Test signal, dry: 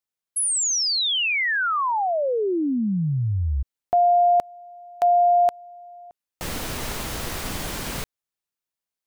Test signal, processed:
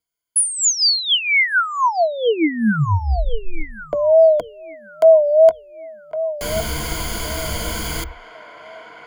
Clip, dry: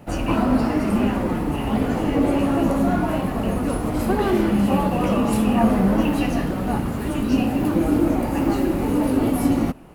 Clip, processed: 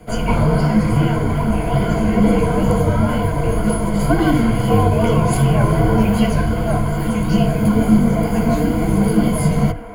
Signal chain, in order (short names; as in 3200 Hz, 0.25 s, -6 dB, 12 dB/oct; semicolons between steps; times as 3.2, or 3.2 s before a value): on a send: band-limited delay 1.11 s, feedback 32%, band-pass 1200 Hz, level -9 dB; on the sum: wow and flutter 82 cents; frequency shift -86 Hz; ripple EQ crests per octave 1.8, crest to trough 14 dB; gain +2.5 dB